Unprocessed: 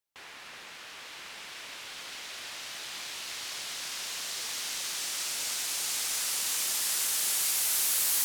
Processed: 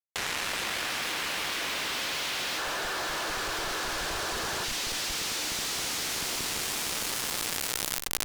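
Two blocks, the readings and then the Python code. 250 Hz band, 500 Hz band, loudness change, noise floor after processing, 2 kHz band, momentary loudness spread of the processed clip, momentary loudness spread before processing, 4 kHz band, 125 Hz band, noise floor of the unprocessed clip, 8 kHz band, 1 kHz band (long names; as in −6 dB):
+14.5 dB, +13.0 dB, 0.0 dB, −34 dBFS, +7.5 dB, 1 LU, 18 LU, +3.0 dB, +16.0 dB, −47 dBFS, −3.0 dB, +10.5 dB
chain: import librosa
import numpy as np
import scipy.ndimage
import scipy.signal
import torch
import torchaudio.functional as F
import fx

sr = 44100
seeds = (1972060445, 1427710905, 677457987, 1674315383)

p1 = fx.tracing_dist(x, sr, depth_ms=0.045)
p2 = p1 + fx.echo_multitap(p1, sr, ms=(42, 59, 137, 461, 470), db=(-12.0, -17.0, -11.5, -4.5, -20.0), dry=0)
p3 = fx.dynamic_eq(p2, sr, hz=310.0, q=1.2, threshold_db=-57.0, ratio=4.0, max_db=6)
p4 = fx.echo_filtered(p3, sr, ms=474, feedback_pct=77, hz=1200.0, wet_db=-3.0)
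p5 = fx.spec_box(p4, sr, start_s=2.58, length_s=2.06, low_hz=320.0, high_hz=1800.0, gain_db=10)
p6 = fx.schmitt(p5, sr, flips_db=-23.0)
p7 = p5 + (p6 * 10.0 ** (-10.5 / 20.0))
p8 = scipy.signal.sosfilt(scipy.signal.butter(2, 6700.0, 'lowpass', fs=sr, output='sos'), p7)
p9 = fx.fuzz(p8, sr, gain_db=44.0, gate_db=-46.0)
p10 = fx.env_flatten(p9, sr, amount_pct=100)
y = p10 * 10.0 ** (-17.5 / 20.0)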